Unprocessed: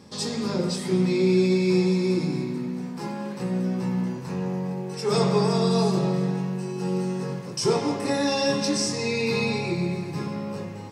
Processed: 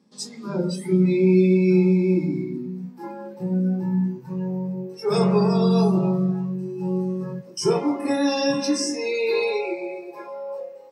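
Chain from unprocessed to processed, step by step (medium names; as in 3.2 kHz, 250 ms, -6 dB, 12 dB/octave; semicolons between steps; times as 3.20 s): high-pass sweep 210 Hz -> 490 Hz, 8.69–9.75 s; spectral noise reduction 17 dB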